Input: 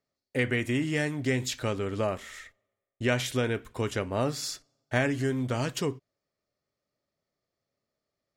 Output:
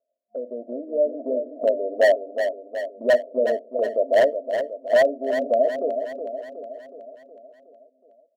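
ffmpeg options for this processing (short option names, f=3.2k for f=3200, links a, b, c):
-filter_complex "[0:a]afftfilt=real='re*between(b*sr/4096,220,710)':imag='im*between(b*sr/4096,220,710)':win_size=4096:overlap=0.75,asplit=2[a][b];[b]acompressor=threshold=-41dB:ratio=10,volume=0.5dB[c];[a][c]amix=inputs=2:normalize=0,lowshelf=f=470:t=q:w=3:g=-10.5,dynaudnorm=f=490:g=3:m=10.5dB,aeval=exprs='0.299*(abs(mod(val(0)/0.299+3,4)-2)-1)':c=same,aecho=1:1:368|736|1104|1472|1840|2208|2576:0.398|0.223|0.125|0.0699|0.0392|0.0219|0.0123"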